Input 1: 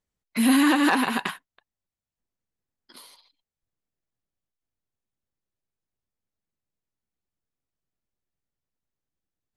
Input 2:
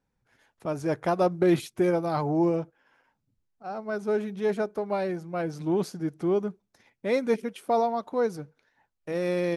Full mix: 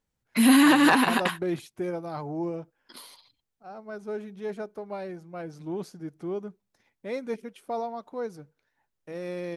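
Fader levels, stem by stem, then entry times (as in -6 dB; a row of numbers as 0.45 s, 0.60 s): +1.5 dB, -7.5 dB; 0.00 s, 0.00 s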